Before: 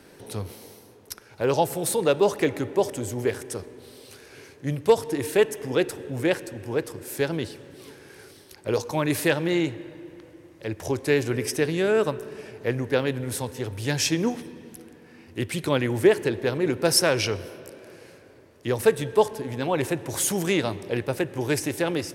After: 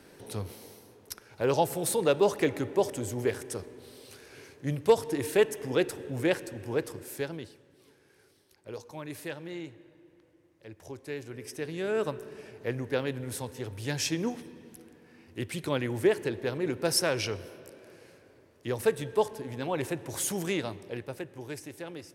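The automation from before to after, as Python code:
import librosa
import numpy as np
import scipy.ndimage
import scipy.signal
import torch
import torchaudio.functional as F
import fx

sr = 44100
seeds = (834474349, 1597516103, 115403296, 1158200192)

y = fx.gain(x, sr, db=fx.line((6.95, -3.5), (7.64, -16.0), (11.33, -16.0), (12.05, -6.5), (20.44, -6.5), (21.6, -15.5)))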